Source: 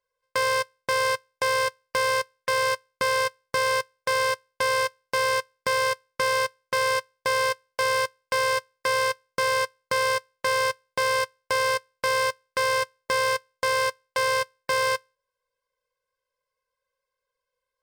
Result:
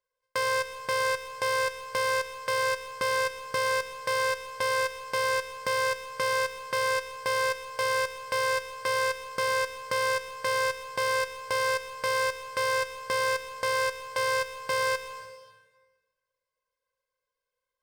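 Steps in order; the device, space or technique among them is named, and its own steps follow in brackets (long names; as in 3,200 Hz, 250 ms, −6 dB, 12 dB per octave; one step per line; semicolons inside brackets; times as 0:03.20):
saturated reverb return (on a send at −5 dB: convolution reverb RT60 1.3 s, pre-delay 101 ms + soft clipping −29 dBFS, distortion −7 dB)
on the sum: level −4 dB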